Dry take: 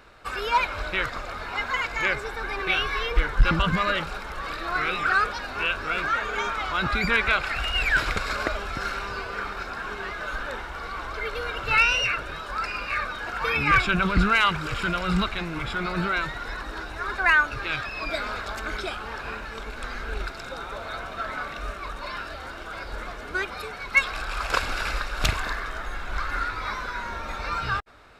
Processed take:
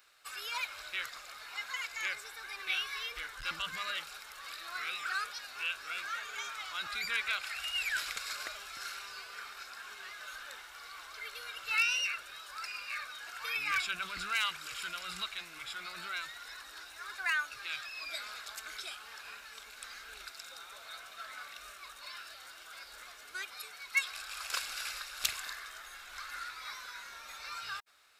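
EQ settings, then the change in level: pre-emphasis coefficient 0.97; low shelf 300 Hz -4.5 dB; notch 940 Hz, Q 22; 0.0 dB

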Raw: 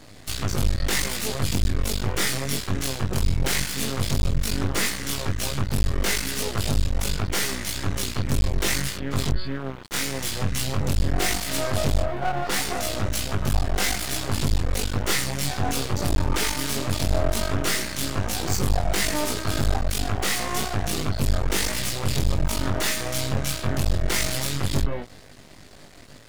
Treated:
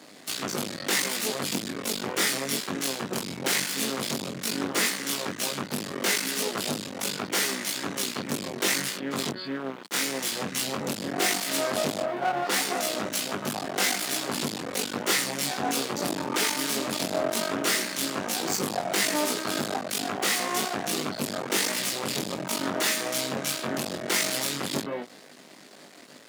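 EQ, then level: HPF 200 Hz 24 dB/oct; 0.0 dB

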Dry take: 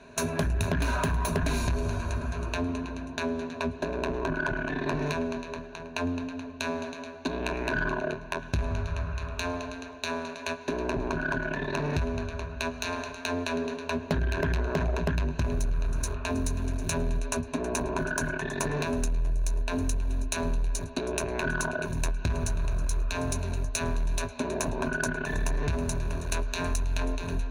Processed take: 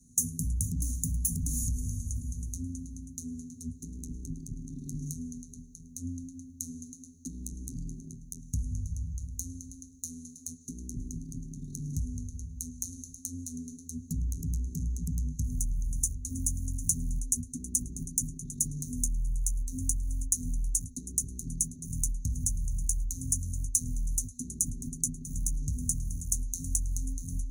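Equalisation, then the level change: Chebyshev band-stop 240–6600 Hz, order 4; tone controls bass -3 dB, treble +10 dB; bell 220 Hz -7 dB 0.28 oct; 0.0 dB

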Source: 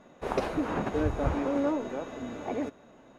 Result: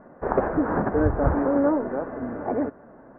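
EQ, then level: elliptic low-pass 1700 Hz, stop band 80 dB; air absorption 98 m; +7.5 dB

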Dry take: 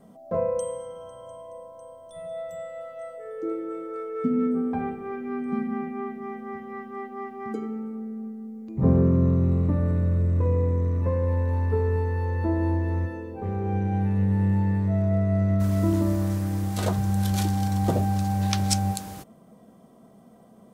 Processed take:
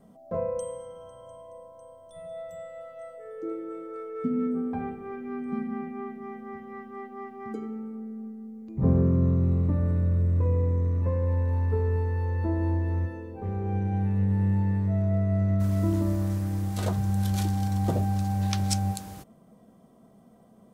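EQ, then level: low shelf 110 Hz +6 dB; -4.5 dB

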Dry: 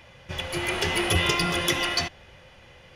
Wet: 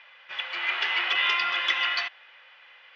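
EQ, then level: Butterworth band-pass 2200 Hz, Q 0.74; air absorption 170 m; +4.5 dB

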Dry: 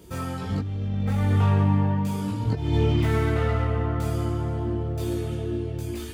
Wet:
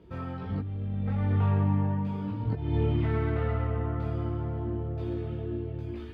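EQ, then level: air absorption 370 m; -4.5 dB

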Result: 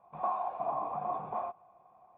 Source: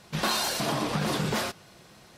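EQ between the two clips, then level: vocal tract filter a; +6.0 dB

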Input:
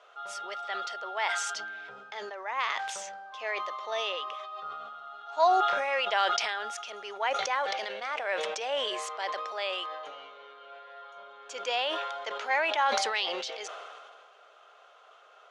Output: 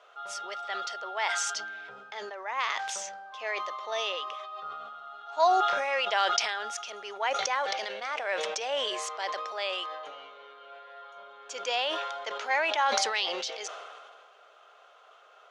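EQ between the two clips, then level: dynamic EQ 5900 Hz, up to +5 dB, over -51 dBFS, Q 1.5; 0.0 dB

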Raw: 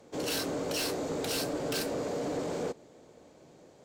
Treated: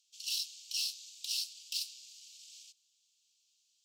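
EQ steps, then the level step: steep high-pass 2700 Hz 72 dB/oct; dynamic EQ 4200 Hz, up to +5 dB, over -49 dBFS, Q 0.9; bell 5300 Hz +5 dB 0.49 oct; -6.0 dB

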